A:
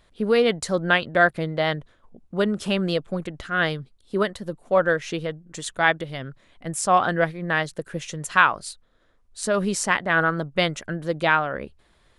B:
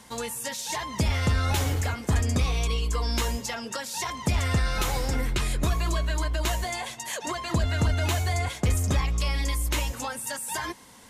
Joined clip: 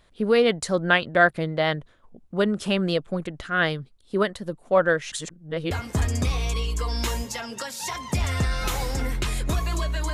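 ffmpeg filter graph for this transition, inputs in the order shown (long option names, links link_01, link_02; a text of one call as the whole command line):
ffmpeg -i cue0.wav -i cue1.wav -filter_complex "[0:a]apad=whole_dur=10.13,atrim=end=10.13,asplit=2[link_01][link_02];[link_01]atrim=end=5.122[link_03];[link_02]atrim=start=5.118:end=5.712,asetpts=PTS-STARTPTS,areverse[link_04];[1:a]atrim=start=1.848:end=6.27[link_05];[link_03][link_04]acrossfade=duration=0.004:curve1=hsin:curve2=hsin[link_06];[link_06][link_05]acrossfade=duration=0.004:curve1=hsin:curve2=hsin" out.wav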